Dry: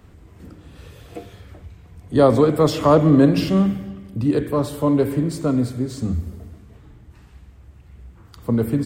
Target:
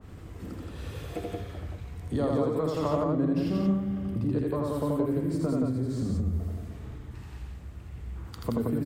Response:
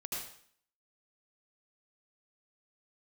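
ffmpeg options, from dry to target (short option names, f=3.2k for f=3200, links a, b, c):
-af "acompressor=threshold=-29dB:ratio=5,aecho=1:1:81.63|174.9:0.794|0.794,adynamicequalizer=threshold=0.00316:dfrequency=1800:dqfactor=0.7:tfrequency=1800:tqfactor=0.7:attack=5:release=100:ratio=0.375:range=4:mode=cutabove:tftype=highshelf"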